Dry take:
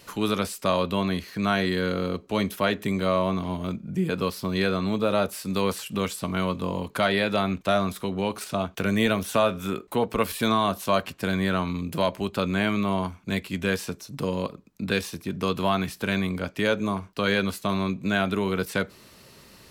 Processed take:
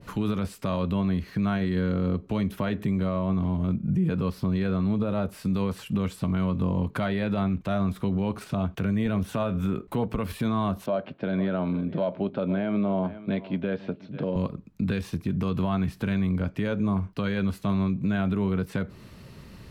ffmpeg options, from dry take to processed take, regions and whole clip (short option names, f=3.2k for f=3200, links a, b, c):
-filter_complex "[0:a]asettb=1/sr,asplit=3[a][b][c];[a]atrim=end=10.864[d];[b]atrim=start=10.86:end=14.36,asetpts=PTS-STARTPTS,afade=t=in:d=0.004:c=qsin,afade=t=out:st=3.496:d=0.004:c=qsin,highpass=240,equalizer=f=600:t=q:w=4:g=8,equalizer=f=1.1k:t=q:w=4:g=-7,equalizer=f=1.9k:t=q:w=4:g=-6,equalizer=f=2.7k:t=q:w=4:g=-5,lowpass=f=3.5k:w=0.5412,lowpass=f=3.5k:w=1.3066,aecho=1:1:494:0.106,atrim=end_sample=154350[e];[c]atrim=start=14.356[f];[d][e]acrossfade=d=0.004:c1=hsin:c2=qsin[g];[g][f]acrossfade=d=0.004:c1=qsin:c2=hsin,bass=f=250:g=12,treble=f=4k:g=-8,alimiter=limit=-18dB:level=0:latency=1:release=107,adynamicequalizer=threshold=0.00631:dfrequency=1700:dqfactor=0.7:tfrequency=1700:tqfactor=0.7:attack=5:release=100:ratio=0.375:range=2.5:mode=cutabove:tftype=highshelf"